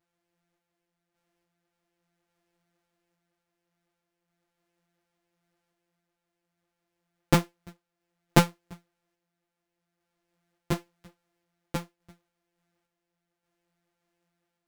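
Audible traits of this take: a buzz of ramps at a fixed pitch in blocks of 256 samples; random-step tremolo; a shimmering, thickened sound

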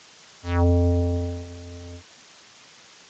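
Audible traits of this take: a quantiser's noise floor 8-bit, dither triangular; Speex

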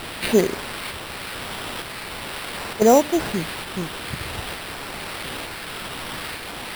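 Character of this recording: a quantiser's noise floor 6-bit, dither triangular; phasing stages 8, 0.46 Hz, lowest notch 610–3100 Hz; aliases and images of a low sample rate 6600 Hz, jitter 0%; tremolo saw up 1.1 Hz, depth 30%

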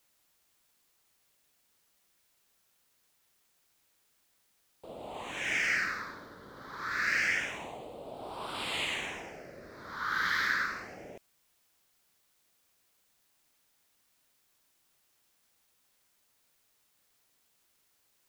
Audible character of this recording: phasing stages 6, 0.27 Hz, lowest notch 690–1800 Hz; a quantiser's noise floor 12-bit, dither triangular

